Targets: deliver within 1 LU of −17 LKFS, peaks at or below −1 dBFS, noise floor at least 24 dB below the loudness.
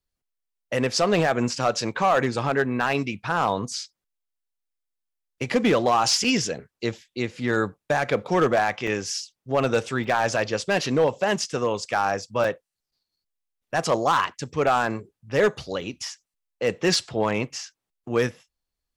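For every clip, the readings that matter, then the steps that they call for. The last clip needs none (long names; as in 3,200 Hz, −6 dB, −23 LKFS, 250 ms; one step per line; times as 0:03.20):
share of clipped samples 0.6%; peaks flattened at −13.0 dBFS; number of dropouts 5; longest dropout 3.8 ms; integrated loudness −24.0 LKFS; sample peak −13.0 dBFS; target loudness −17.0 LKFS
→ clipped peaks rebuilt −13 dBFS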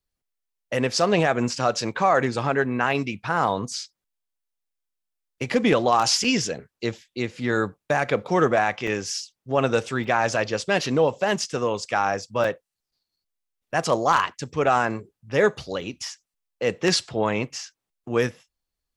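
share of clipped samples 0.0%; number of dropouts 5; longest dropout 3.8 ms
→ repair the gap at 0:06.24/0:08.87/0:10.04/0:12.44/0:15.81, 3.8 ms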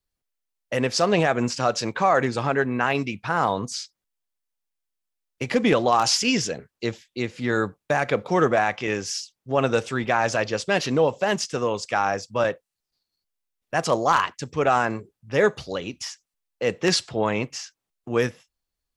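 number of dropouts 0; integrated loudness −23.5 LKFS; sample peak −4.0 dBFS; target loudness −17.0 LKFS
→ level +6.5 dB
brickwall limiter −1 dBFS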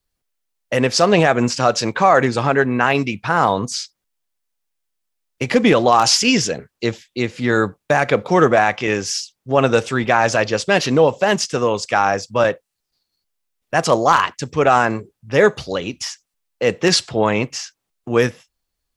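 integrated loudness −17.5 LKFS; sample peak −1.0 dBFS; background noise floor −78 dBFS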